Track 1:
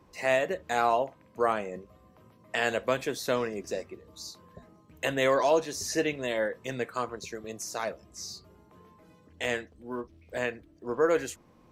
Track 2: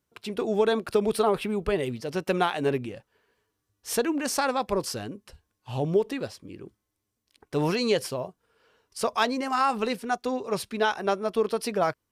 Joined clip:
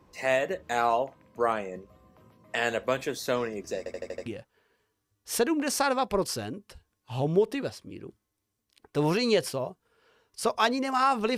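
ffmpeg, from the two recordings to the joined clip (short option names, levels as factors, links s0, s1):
-filter_complex "[0:a]apad=whole_dur=11.37,atrim=end=11.37,asplit=6[s0][s1][s2][s3][s4][s5];[s0]atrim=end=3.862[s6];[s1]atrim=start=3.778:end=3.862[s7];[s2]atrim=start=3.778:end=3.862[s8];[s3]atrim=start=3.778:end=3.862[s9];[s4]atrim=start=3.778:end=3.862[s10];[s5]atrim=start=3.778:end=3.862[s11];[1:a]atrim=start=2.838:end=9.95[s12];[s6][s7]acrossfade=d=0.004:c1=hsin:c2=hsin[s13];[s13][s8]acrossfade=d=0.004:c1=hsin:c2=hsin[s14];[s14][s9]acrossfade=d=0.004:c1=hsin:c2=hsin[s15];[s15][s10]acrossfade=d=0.004:c1=hsin:c2=hsin[s16];[s16][s11]acrossfade=d=0.004:c1=hsin:c2=hsin[s17];[s17][s12]acrossfade=d=0.004:c1=hsin:c2=hsin"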